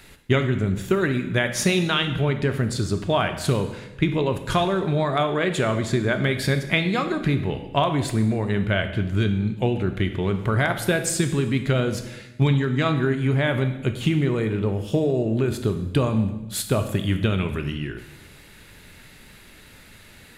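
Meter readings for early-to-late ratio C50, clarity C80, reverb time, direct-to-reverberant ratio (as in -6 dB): 9.5 dB, 12.0 dB, 1.0 s, 7.5 dB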